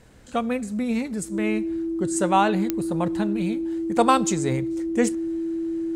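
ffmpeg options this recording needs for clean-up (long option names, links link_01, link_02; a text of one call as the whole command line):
ffmpeg -i in.wav -af "adeclick=threshold=4,bandreject=frequency=330:width=30" out.wav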